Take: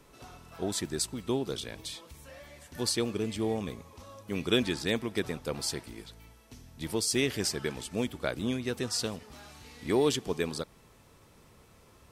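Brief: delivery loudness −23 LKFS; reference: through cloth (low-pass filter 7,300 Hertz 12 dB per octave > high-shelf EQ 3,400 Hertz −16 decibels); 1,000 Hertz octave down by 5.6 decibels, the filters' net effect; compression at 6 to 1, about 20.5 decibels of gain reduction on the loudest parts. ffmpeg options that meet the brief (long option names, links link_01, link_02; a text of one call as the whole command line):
ffmpeg -i in.wav -af "equalizer=frequency=1000:width_type=o:gain=-6,acompressor=threshold=-45dB:ratio=6,lowpass=7300,highshelf=frequency=3400:gain=-16,volume=28dB" out.wav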